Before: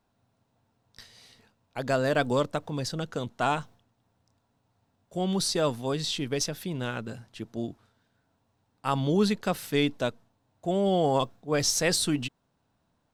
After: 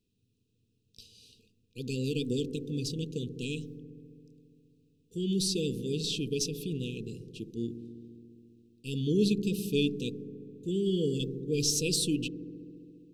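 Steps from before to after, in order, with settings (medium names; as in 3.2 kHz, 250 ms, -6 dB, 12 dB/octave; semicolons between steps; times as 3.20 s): brick-wall FIR band-stop 500–2400 Hz; on a send: feedback echo behind a low-pass 68 ms, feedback 85%, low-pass 490 Hz, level -11 dB; on the sum: trim -2.5 dB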